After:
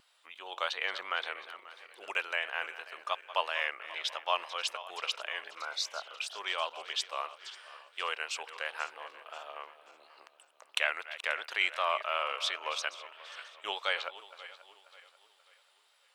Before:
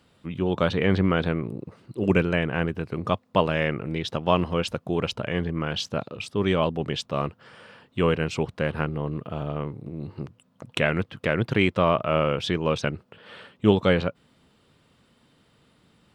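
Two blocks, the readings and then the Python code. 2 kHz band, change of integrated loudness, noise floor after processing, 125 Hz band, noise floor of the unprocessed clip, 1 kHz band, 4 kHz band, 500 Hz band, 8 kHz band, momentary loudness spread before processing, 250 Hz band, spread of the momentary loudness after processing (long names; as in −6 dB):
−3.5 dB, −9.0 dB, −68 dBFS, below −40 dB, −64 dBFS, −6.0 dB, −1.5 dB, −17.0 dB, +0.5 dB, 13 LU, below −35 dB, 16 LU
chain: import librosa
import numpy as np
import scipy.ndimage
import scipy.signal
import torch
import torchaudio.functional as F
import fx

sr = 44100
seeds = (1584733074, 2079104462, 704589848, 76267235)

y = fx.reverse_delay_fb(x, sr, ms=268, feedback_pct=61, wet_db=-14.0)
y = fx.spec_repair(y, sr, seeds[0], start_s=5.63, length_s=0.48, low_hz=1600.0, high_hz=3500.0, source='both')
y = scipy.signal.sosfilt(scipy.signal.butter(4, 710.0, 'highpass', fs=sr, output='sos'), y)
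y = fx.high_shelf(y, sr, hz=2100.0, db=8.5)
y = fx.vibrato(y, sr, rate_hz=2.9, depth_cents=40.0)
y = F.gain(torch.from_numpy(y), -7.5).numpy()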